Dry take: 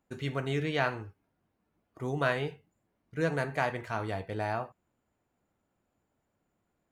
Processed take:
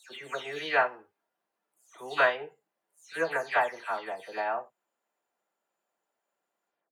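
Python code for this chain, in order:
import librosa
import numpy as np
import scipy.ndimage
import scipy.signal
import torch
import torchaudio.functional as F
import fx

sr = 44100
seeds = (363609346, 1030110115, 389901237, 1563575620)

y = fx.spec_delay(x, sr, highs='early', ms=234)
y = scipy.signal.sosfilt(scipy.signal.butter(2, 580.0, 'highpass', fs=sr, output='sos'), y)
y = fx.notch(y, sr, hz=2200.0, q=19.0)
y = fx.upward_expand(y, sr, threshold_db=-43.0, expansion=1.5)
y = y * 10.0 ** (8.0 / 20.0)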